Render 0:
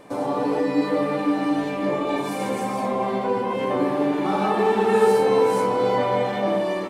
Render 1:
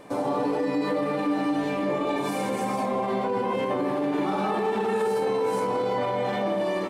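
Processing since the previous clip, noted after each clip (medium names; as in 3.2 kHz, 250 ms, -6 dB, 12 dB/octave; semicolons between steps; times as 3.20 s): peak limiter -18 dBFS, peak gain reduction 10.5 dB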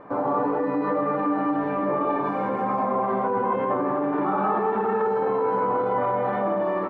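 resonant low-pass 1.3 kHz, resonance Q 2.2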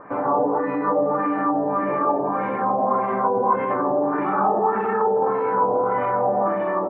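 LFO low-pass sine 1.7 Hz 640–2500 Hz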